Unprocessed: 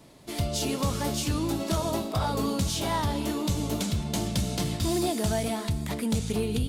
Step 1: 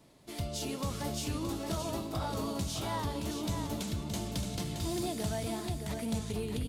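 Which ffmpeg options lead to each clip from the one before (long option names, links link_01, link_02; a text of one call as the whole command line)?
ffmpeg -i in.wav -af "aecho=1:1:621:0.473,volume=-8dB" out.wav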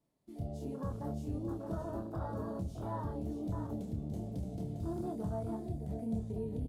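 ffmpeg -i in.wav -filter_complex "[0:a]afwtdn=0.0141,equalizer=frequency=3300:width=0.43:gain=-7,asplit=2[link_01][link_02];[link_02]adelay=27,volume=-6.5dB[link_03];[link_01][link_03]amix=inputs=2:normalize=0,volume=-3.5dB" out.wav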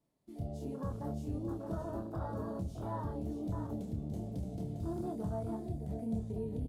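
ffmpeg -i in.wav -af anull out.wav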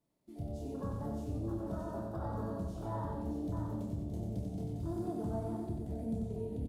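ffmpeg -i in.wav -af "aecho=1:1:92|184|276|368|460|552:0.631|0.303|0.145|0.0698|0.0335|0.0161,volume=-1.5dB" out.wav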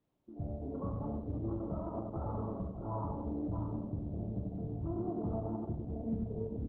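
ffmpeg -i in.wav -af "afftfilt=real='re*(1-between(b*sr/4096,1400,9500))':imag='im*(1-between(b*sr/4096,1400,9500))':win_size=4096:overlap=0.75,volume=1dB" -ar 48000 -c:a libopus -b:a 8k out.opus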